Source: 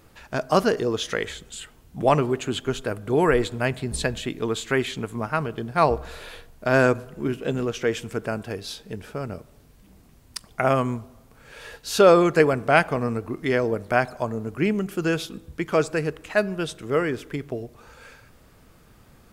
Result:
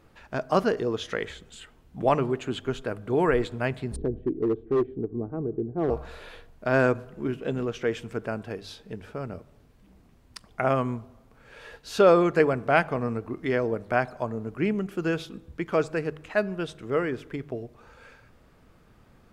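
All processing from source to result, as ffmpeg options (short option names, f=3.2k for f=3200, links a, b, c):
-filter_complex "[0:a]asettb=1/sr,asplit=3[a][b][c];[a]atrim=end=3.964[d];[b]atrim=start=3.96:end=5.9,asetpts=PTS-STARTPTS,afade=t=in:d=0.004:c=qsin,afade=t=out:st=1.936:d=0.004:c=qsin,lowpass=f=360:t=q:w=2.1,aecho=1:1:2.6:0.32,atrim=end_sample=85554,asoftclip=type=hard:threshold=-16dB[e];[c]atrim=start=5.896[f];[d][e]acrossfade=d=0.004:c1=hsin:c2=qsin[g];[g][f]acrossfade=d=0.004:c1=qsin:c2=hsin,highshelf=f=5.1k:g=-12,bandreject=f=50:t=h:w=6,bandreject=f=100:t=h:w=6,bandreject=f=150:t=h:w=6,volume=-3dB"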